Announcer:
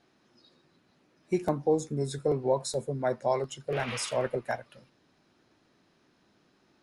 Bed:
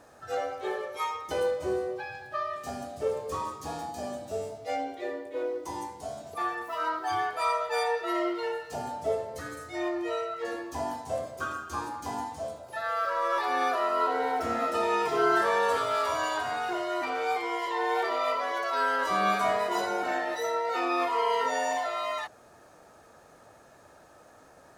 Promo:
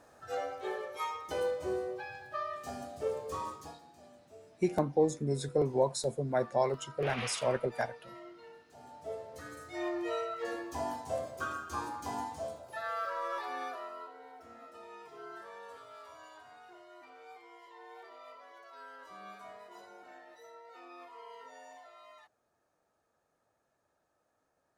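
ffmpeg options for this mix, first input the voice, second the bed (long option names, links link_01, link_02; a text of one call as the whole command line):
ffmpeg -i stem1.wav -i stem2.wav -filter_complex "[0:a]adelay=3300,volume=-1.5dB[link_01];[1:a]volume=12.5dB,afade=type=out:start_time=3.53:duration=0.26:silence=0.158489,afade=type=in:start_time=8.75:duration=1.32:silence=0.133352,afade=type=out:start_time=12.4:duration=1.72:silence=0.1[link_02];[link_01][link_02]amix=inputs=2:normalize=0" out.wav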